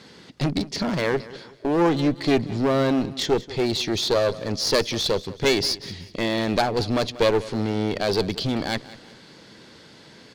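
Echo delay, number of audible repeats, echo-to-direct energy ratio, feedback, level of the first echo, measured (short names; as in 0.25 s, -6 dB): 0.187 s, 3, -17.5 dB, 38%, -18.0 dB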